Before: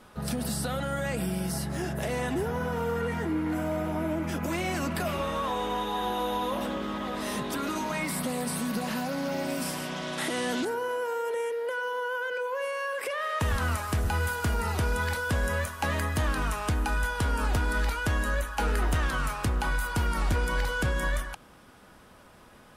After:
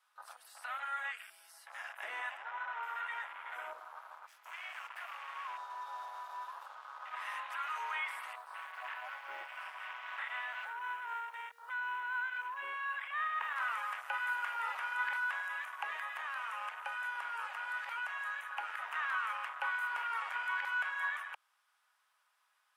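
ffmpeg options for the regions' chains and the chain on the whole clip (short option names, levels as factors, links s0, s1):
-filter_complex "[0:a]asettb=1/sr,asplit=3[s0][s1][s2];[s0]atrim=end=2.374[s3];[s1]atrim=start=2.37:end=2.83,asetpts=PTS-STARTPTS,afade=t=in:d=0.004:c=qsin,afade=t=out:st=0.456:d=0.004:c=qsin,highpass=120,lowpass=6900,aemphasis=mode=reproduction:type=50fm[s4];[s2]atrim=start=2.826[s5];[s3][s4]acrossfade=d=0.004:c1=hsin:c2=qsin[s6];[s6][s5]acrossfade=d=0.004:c1=qsin:c2=hsin,asettb=1/sr,asplit=3[s7][s8][s9];[s7]atrim=end=3.734[s10];[s8]atrim=start=3.73:end=7.14,asetpts=PTS-STARTPTS,afade=t=in:d=0.004:c=qsin,afade=t=out:st=3.406:d=0.004:c=qsin,asoftclip=type=hard:threshold=0.0168,asplit=2[s11][s12];[s12]adelay=13,volume=0.251[s13];[s11][s13]amix=inputs=2:normalize=0,atrim=end_sample=150381[s14];[s9]atrim=start=7.136[s15];[s10][s14]acrossfade=d=0.004:c1=hsin:c2=qsin[s16];[s16][s15]acrossfade=d=0.004:c1=qsin:c2=hsin,asettb=1/sr,asplit=3[s17][s18][s19];[s17]atrim=end=8.334[s20];[s18]atrim=start=8.33:end=13.56,asetpts=PTS-STARTPTS,afade=t=in:d=0.004:c=qsin,afade=t=out:st=5.226:d=0.004:c=qsin,acrossover=split=3500[s21][s22];[s22]acompressor=threshold=0.00224:ratio=4:attack=1:release=60[s23];[s21][s23]amix=inputs=2:normalize=0,tremolo=f=3.9:d=0.29,acrusher=bits=6:mode=log:mix=0:aa=0.000001[s24];[s19]atrim=start=13.556[s25];[s20][s24]acrossfade=d=0.004:c1=hsin:c2=qsin[s26];[s26][s25]acrossfade=d=0.004:c1=qsin:c2=hsin,asettb=1/sr,asplit=3[s27][s28][s29];[s27]atrim=end=15.394[s30];[s28]atrim=start=15.39:end=18.91,asetpts=PTS-STARTPTS,afade=t=in:d=0.004:c=qsin,afade=t=out:st=3.516:d=0.004:c=qsin,equalizer=f=630:w=1.6:g=8.5,acrossover=split=960|2900[s31][s32][s33];[s31]acompressor=threshold=0.0158:ratio=4[s34];[s32]acompressor=threshold=0.0141:ratio=4[s35];[s33]acompressor=threshold=0.01:ratio=4[s36];[s34][s35][s36]amix=inputs=3:normalize=0[s37];[s29]atrim=start=18.906[s38];[s30][s37]acrossfade=d=0.004:c1=hsin:c2=qsin[s39];[s39][s38]acrossfade=d=0.004:c1=qsin:c2=hsin,highpass=f=970:w=0.5412,highpass=f=970:w=1.3066,afwtdn=0.01,acrossover=split=3300[s40][s41];[s41]acompressor=threshold=0.00224:ratio=4:attack=1:release=60[s42];[s40][s42]amix=inputs=2:normalize=0,volume=0.841"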